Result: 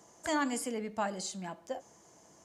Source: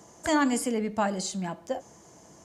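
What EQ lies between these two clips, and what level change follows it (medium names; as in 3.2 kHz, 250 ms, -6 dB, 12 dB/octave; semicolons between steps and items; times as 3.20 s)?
bass shelf 280 Hz -6.5 dB; -5.5 dB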